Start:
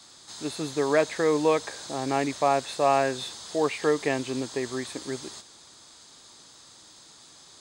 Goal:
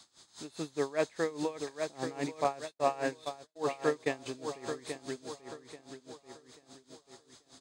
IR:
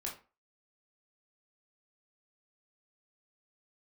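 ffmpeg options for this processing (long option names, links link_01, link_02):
-filter_complex "[0:a]asplit=2[link_01][link_02];[link_02]adelay=836,lowpass=frequency=3800:poles=1,volume=-7dB,asplit=2[link_03][link_04];[link_04]adelay=836,lowpass=frequency=3800:poles=1,volume=0.48,asplit=2[link_05][link_06];[link_06]adelay=836,lowpass=frequency=3800:poles=1,volume=0.48,asplit=2[link_07][link_08];[link_08]adelay=836,lowpass=frequency=3800:poles=1,volume=0.48,asplit=2[link_09][link_10];[link_10]adelay=836,lowpass=frequency=3800:poles=1,volume=0.48,asplit=2[link_11][link_12];[link_12]adelay=836,lowpass=frequency=3800:poles=1,volume=0.48[link_13];[link_01][link_03][link_05][link_07][link_09][link_11][link_13]amix=inputs=7:normalize=0,asettb=1/sr,asplit=3[link_14][link_15][link_16];[link_14]atrim=end=2.444[link_17];[link_15]atrim=start=2.44:end=4.26,asetpts=PTS-STARTPTS,afade=type=in:duration=0.004:curve=qsin,afade=type=out:start_time=1.816:duration=0.004:curve=qsin,agate=range=-40dB:threshold=-29dB:ratio=16:detection=peak[link_18];[link_16]atrim=start=4.256[link_19];[link_17][link_18]acrossfade=duration=0.004:curve1=hsin:curve2=qsin[link_20];[link_20][link_19]acrossfade=duration=0.004:curve1=qsin:curve2=hsin,aeval=exprs='val(0)*pow(10,-20*(0.5-0.5*cos(2*PI*4.9*n/s))/20)':channel_layout=same,volume=-4.5dB"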